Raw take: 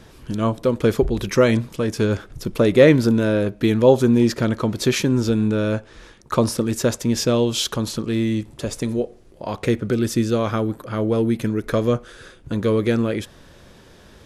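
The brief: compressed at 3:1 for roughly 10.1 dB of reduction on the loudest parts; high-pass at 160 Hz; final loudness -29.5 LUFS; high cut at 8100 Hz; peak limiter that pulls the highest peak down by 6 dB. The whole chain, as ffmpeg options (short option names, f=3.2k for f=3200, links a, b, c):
-af "highpass=160,lowpass=8.1k,acompressor=threshold=-21dB:ratio=3,volume=-2.5dB,alimiter=limit=-17dB:level=0:latency=1"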